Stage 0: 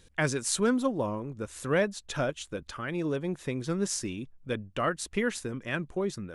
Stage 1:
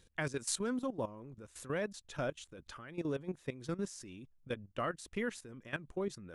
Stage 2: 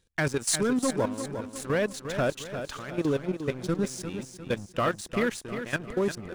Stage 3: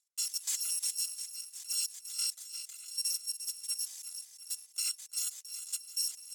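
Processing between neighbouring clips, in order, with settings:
level held to a coarse grid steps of 15 dB; trim -4.5 dB
waveshaping leveller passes 3; on a send: feedback delay 352 ms, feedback 45%, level -9 dB
bit-reversed sample order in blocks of 256 samples; band-pass filter 7.3 kHz, Q 2.1

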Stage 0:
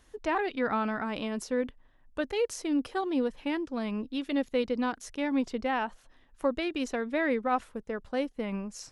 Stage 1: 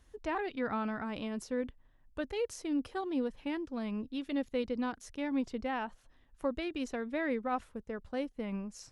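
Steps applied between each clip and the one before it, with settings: peaking EQ 63 Hz +8.5 dB 2.8 oct; trim -6.5 dB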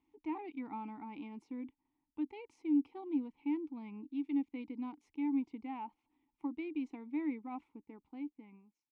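fade out at the end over 1.15 s; vowel filter u; trim +4 dB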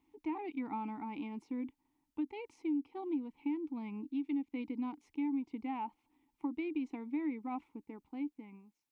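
compression 5:1, threshold -37 dBFS, peak gain reduction 10.5 dB; trim +4.5 dB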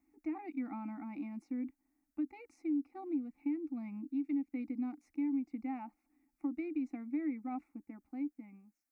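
static phaser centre 640 Hz, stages 8; trim +1 dB

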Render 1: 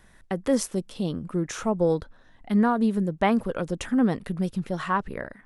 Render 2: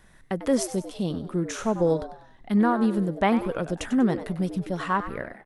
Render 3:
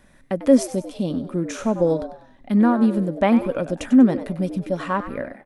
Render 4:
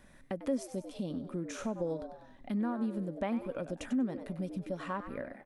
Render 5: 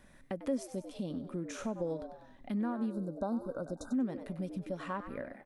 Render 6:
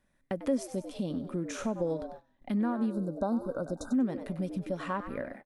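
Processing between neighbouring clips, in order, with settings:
frequency-shifting echo 96 ms, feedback 36%, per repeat +120 Hz, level -12.5 dB
small resonant body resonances 260/560/2400 Hz, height 10 dB, ringing for 45 ms
compression 2:1, threshold -36 dBFS, peak gain reduction 14.5 dB; trim -4.5 dB
spectral selection erased 2.92–3.94 s, 1.6–3.6 kHz; trim -1 dB
gate -50 dBFS, range -18 dB; trim +4.5 dB

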